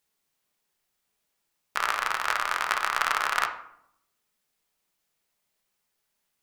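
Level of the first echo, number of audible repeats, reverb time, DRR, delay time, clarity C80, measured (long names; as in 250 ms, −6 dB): no echo audible, no echo audible, 0.70 s, 3.0 dB, no echo audible, 12.5 dB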